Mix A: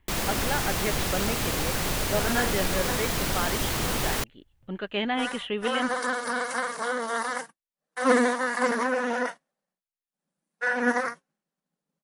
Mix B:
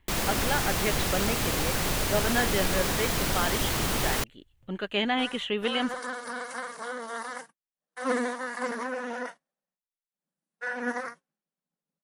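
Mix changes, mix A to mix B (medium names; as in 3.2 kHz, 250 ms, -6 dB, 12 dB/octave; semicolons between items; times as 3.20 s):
speech: remove distance through air 150 m; second sound -7.0 dB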